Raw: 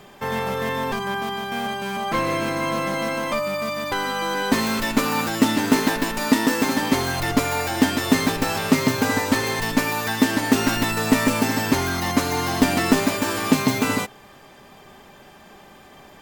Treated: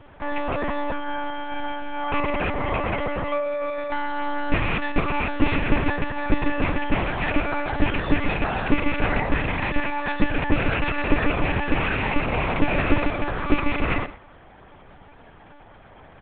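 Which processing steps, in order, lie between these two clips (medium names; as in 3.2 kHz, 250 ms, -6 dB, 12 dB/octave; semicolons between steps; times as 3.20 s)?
rattle on loud lows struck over -27 dBFS, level -9 dBFS; low-pass 2.3 kHz 12 dB/octave; hum notches 60/120/180 Hz; delay 110 ms -15 dB; monotone LPC vocoder at 8 kHz 290 Hz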